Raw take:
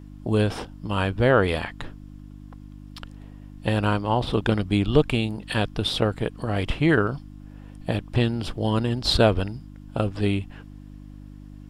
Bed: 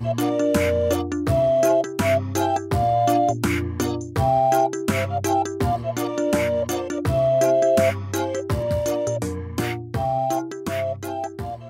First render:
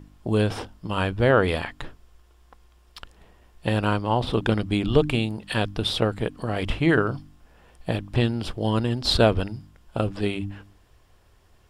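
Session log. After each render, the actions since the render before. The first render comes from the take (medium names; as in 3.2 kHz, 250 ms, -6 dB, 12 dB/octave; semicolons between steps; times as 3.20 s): de-hum 50 Hz, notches 6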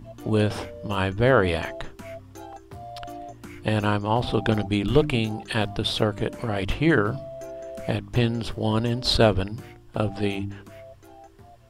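add bed -19.5 dB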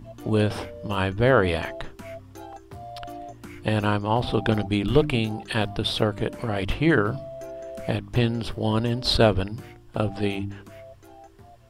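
dynamic bell 6.8 kHz, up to -5 dB, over -59 dBFS, Q 3.5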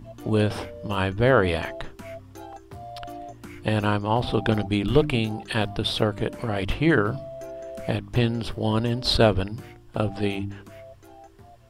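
no audible change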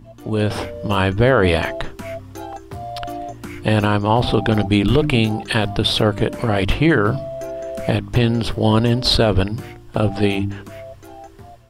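peak limiter -14 dBFS, peak gain reduction 9 dB; level rider gain up to 9 dB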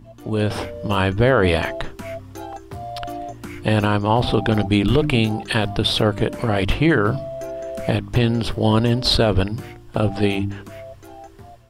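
trim -1.5 dB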